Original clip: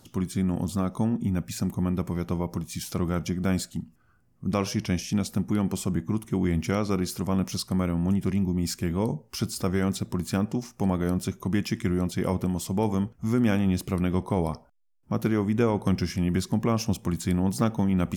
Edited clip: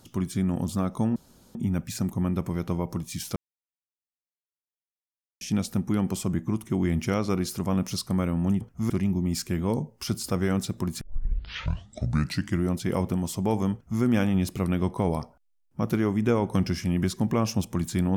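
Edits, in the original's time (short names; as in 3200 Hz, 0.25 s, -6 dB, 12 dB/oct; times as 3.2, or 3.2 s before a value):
1.16 insert room tone 0.39 s
2.97–5.02 mute
10.33 tape start 1.62 s
13.05–13.34 copy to 8.22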